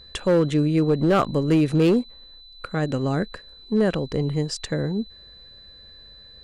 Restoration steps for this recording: clip repair -13 dBFS; notch 4000 Hz, Q 30

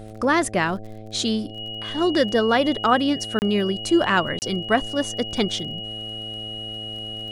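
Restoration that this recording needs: de-click; de-hum 108.5 Hz, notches 7; notch 2900 Hz, Q 30; interpolate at 3.39/4.39, 29 ms

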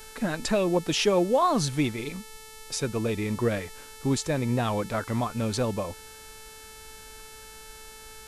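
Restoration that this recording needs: de-hum 438.4 Hz, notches 29; expander -38 dBFS, range -21 dB

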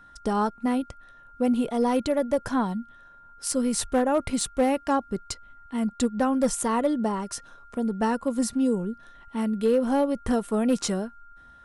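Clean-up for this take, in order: clip repair -15 dBFS; notch 1400 Hz, Q 30

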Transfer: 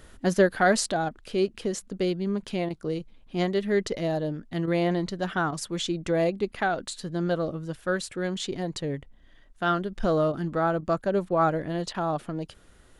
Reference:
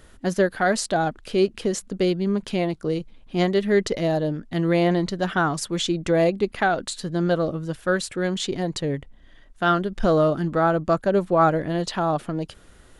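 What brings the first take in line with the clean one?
interpolate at 1.09/2.69/4.66/5.51/10.32/10.81/11.29/11.93, 13 ms; gain correction +5 dB, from 0.92

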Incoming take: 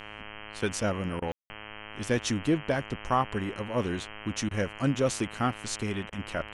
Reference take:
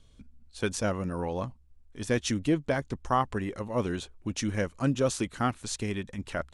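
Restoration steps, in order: de-hum 105.9 Hz, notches 30; room tone fill 1.32–1.5; interpolate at 1.2/4.49/6.1, 19 ms

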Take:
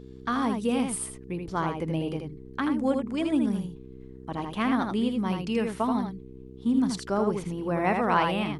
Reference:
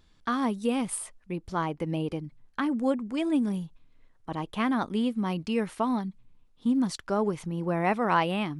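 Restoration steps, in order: de-hum 64.5 Hz, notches 7; inverse comb 80 ms -5 dB

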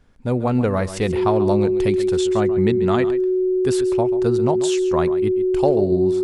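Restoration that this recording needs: notch 370 Hz, Q 30; inverse comb 0.137 s -13.5 dB

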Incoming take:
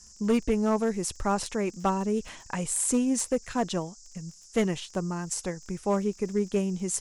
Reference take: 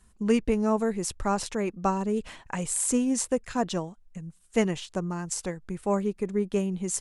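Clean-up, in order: clip repair -17.5 dBFS; de-click; noise print and reduce 6 dB

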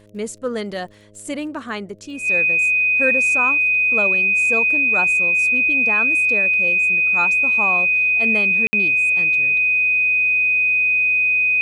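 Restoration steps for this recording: de-click; de-hum 104 Hz, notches 6; notch 2500 Hz, Q 30; room tone fill 8.67–8.73

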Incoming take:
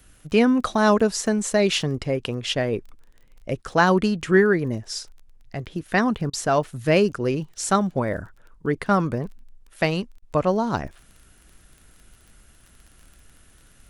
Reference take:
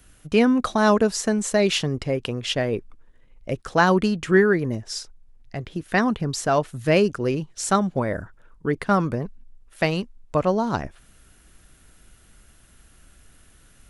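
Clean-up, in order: de-click; interpolate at 6.3/10.19, 31 ms

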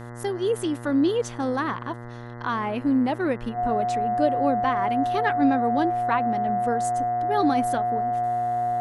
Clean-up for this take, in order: de-hum 119.6 Hz, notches 17; notch 720 Hz, Q 30

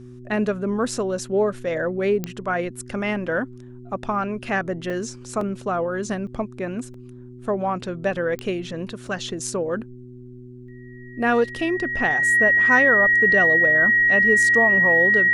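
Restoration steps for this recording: de-click; de-hum 124 Hz, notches 3; notch 1900 Hz, Q 30; interpolate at 4.9/5.41/6.27/6.94/9.07, 2.8 ms

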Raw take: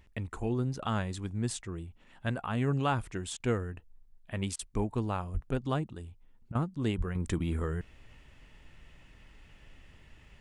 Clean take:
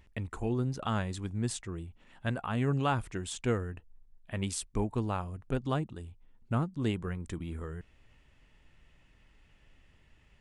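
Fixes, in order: 5.33–5.45 HPF 140 Hz 24 dB/oct; 6.97–7.09 HPF 140 Hz 24 dB/oct; interpolate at 3.37/4.56/6.52, 30 ms; gain 0 dB, from 7.15 s -7 dB

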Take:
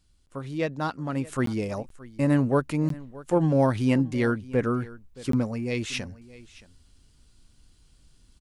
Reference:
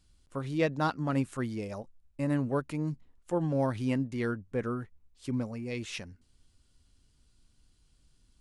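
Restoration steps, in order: interpolate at 1.46/1.89/2.89/5.32, 13 ms; inverse comb 0.622 s -19.5 dB; gain correction -7.5 dB, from 1.27

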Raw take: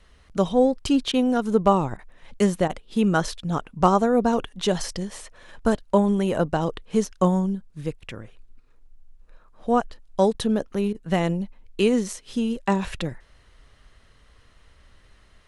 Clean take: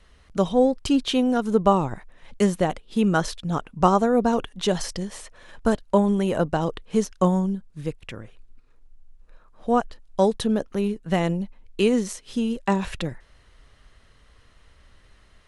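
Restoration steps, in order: clip repair -6.5 dBFS; interpolate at 1.12/1.97/2.68/10.33/10.93, 16 ms

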